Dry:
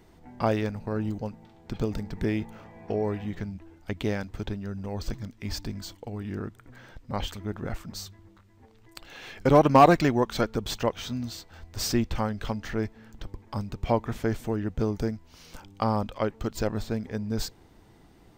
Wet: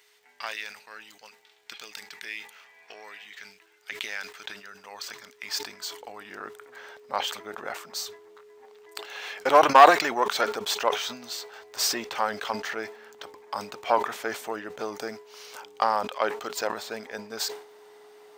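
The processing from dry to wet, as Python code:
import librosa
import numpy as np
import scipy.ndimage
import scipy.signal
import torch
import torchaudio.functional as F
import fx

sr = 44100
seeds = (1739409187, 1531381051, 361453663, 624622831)

y = fx.diode_clip(x, sr, knee_db=-15.5)
y = y + 10.0 ** (-46.0 / 20.0) * np.sin(2.0 * np.pi * 420.0 * np.arange(len(y)) / sr)
y = fx.filter_sweep_highpass(y, sr, from_hz=2200.0, to_hz=770.0, start_s=3.29, end_s=6.82, q=1.0)
y = fx.dmg_crackle(y, sr, seeds[0], per_s=46.0, level_db=-60.0)
y = fx.sustainer(y, sr, db_per_s=110.0)
y = y * librosa.db_to_amplitude(6.0)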